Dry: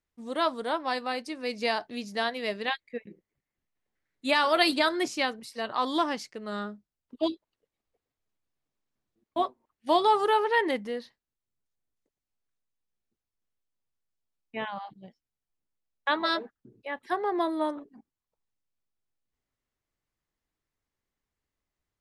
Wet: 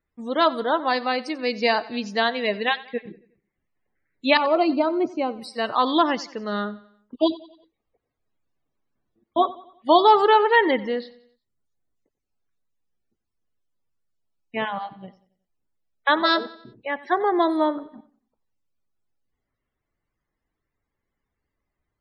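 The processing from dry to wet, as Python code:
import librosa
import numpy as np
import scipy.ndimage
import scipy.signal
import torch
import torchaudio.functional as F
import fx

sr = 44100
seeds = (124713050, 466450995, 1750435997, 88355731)

p1 = fx.spec_topn(x, sr, count=64)
p2 = fx.moving_average(p1, sr, points=25, at=(4.37, 5.39))
p3 = p2 + fx.echo_feedback(p2, sr, ms=91, feedback_pct=45, wet_db=-19, dry=0)
y = p3 * librosa.db_to_amplitude(7.5)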